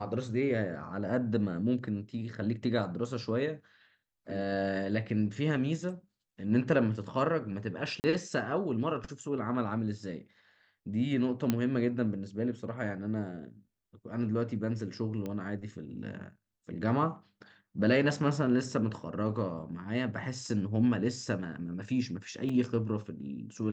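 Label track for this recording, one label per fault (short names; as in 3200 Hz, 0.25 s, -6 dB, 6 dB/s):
8.000000	8.040000	gap 39 ms
11.500000	11.500000	pop -14 dBFS
15.260000	15.260000	pop -25 dBFS
22.490000	22.490000	gap 4.4 ms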